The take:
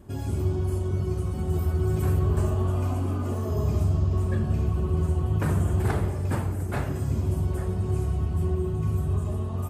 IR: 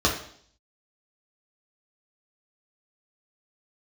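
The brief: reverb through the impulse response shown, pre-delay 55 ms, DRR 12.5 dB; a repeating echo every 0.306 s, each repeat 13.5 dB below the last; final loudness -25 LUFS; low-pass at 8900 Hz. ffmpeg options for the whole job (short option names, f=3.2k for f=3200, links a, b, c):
-filter_complex "[0:a]lowpass=8.9k,aecho=1:1:306|612:0.211|0.0444,asplit=2[a][b];[1:a]atrim=start_sample=2205,adelay=55[c];[b][c]afir=irnorm=-1:irlink=0,volume=-28dB[d];[a][d]amix=inputs=2:normalize=0"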